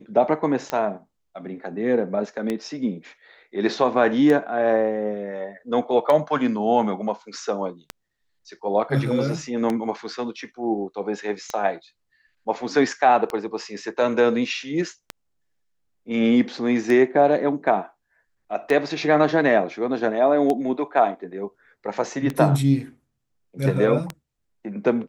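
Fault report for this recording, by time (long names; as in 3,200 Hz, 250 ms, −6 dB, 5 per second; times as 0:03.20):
scratch tick 33 1/3 rpm −12 dBFS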